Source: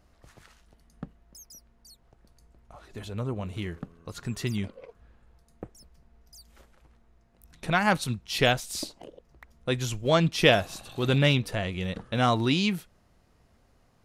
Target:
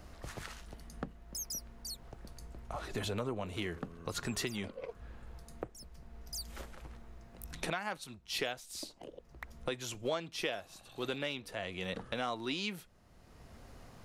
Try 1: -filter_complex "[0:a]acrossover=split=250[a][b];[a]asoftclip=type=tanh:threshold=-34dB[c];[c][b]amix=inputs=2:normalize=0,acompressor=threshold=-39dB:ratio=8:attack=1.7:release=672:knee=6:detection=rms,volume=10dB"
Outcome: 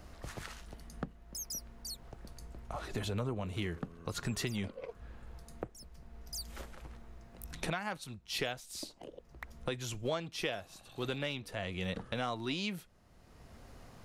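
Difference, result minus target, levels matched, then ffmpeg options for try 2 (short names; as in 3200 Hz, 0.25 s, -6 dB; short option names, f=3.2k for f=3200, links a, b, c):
soft clip: distortion -5 dB
-filter_complex "[0:a]acrossover=split=250[a][b];[a]asoftclip=type=tanh:threshold=-44.5dB[c];[c][b]amix=inputs=2:normalize=0,acompressor=threshold=-39dB:ratio=8:attack=1.7:release=672:knee=6:detection=rms,volume=10dB"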